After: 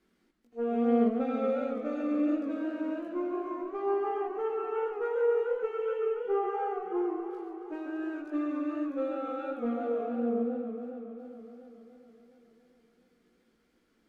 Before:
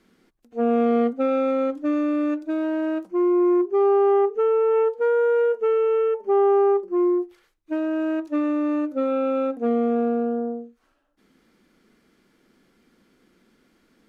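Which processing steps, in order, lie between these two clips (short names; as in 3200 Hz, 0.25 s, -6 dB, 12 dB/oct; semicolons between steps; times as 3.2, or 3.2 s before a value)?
added harmonics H 2 -24 dB, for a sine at -11.5 dBFS; chorus voices 4, 0.39 Hz, delay 19 ms, depth 2.6 ms; warbling echo 0.14 s, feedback 80%, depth 148 cents, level -9 dB; gain -7.5 dB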